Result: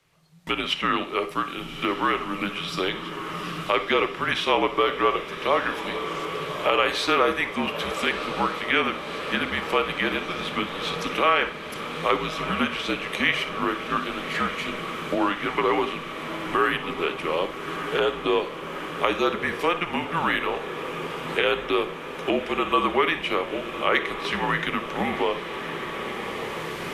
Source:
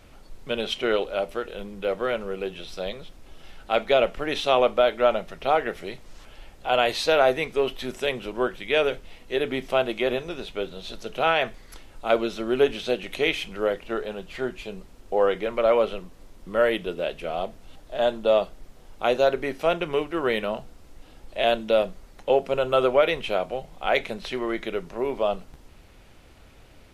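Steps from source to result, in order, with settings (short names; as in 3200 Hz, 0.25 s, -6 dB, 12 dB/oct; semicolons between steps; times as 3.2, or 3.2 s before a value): recorder AGC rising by 8.7 dB/s; dynamic EQ 1400 Hz, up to +8 dB, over -37 dBFS, Q 0.74; frequency shift -180 Hz; diffused feedback echo 1.228 s, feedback 75%, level -13 dB; gate with hold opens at -27 dBFS; low shelf 450 Hz -12 dB; reverb RT60 0.40 s, pre-delay 43 ms, DRR 12 dB; three-band squash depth 40%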